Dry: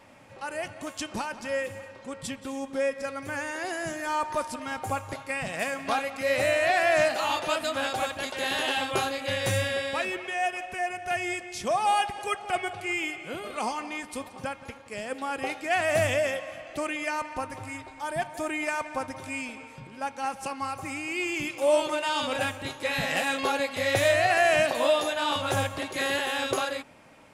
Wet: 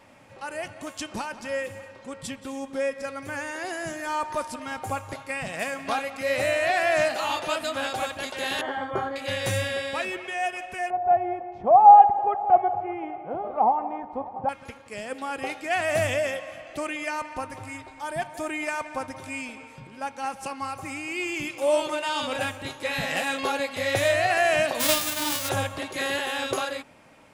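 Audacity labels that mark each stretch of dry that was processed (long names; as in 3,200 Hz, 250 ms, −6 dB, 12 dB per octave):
8.610000	9.160000	Savitzky-Golay smoothing over 41 samples
10.900000	14.490000	low-pass with resonance 800 Hz, resonance Q 5.4
24.790000	25.480000	spectral envelope flattened exponent 0.1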